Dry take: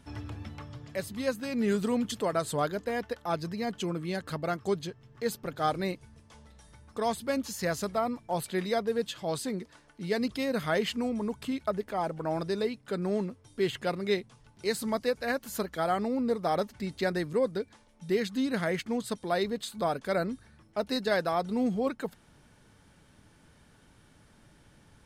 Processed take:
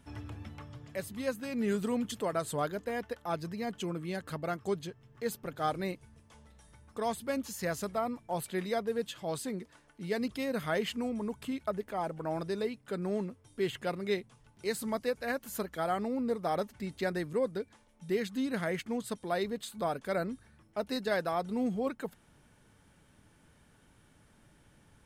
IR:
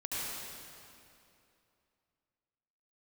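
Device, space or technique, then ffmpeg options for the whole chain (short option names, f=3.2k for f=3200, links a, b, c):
exciter from parts: -filter_complex "[0:a]asplit=2[a][b];[b]highpass=f=3.5k:w=0.5412,highpass=f=3.5k:w=1.3066,asoftclip=type=tanh:threshold=-31dB,highpass=f=4k:p=1,volume=-7dB[c];[a][c]amix=inputs=2:normalize=0,volume=-3.5dB"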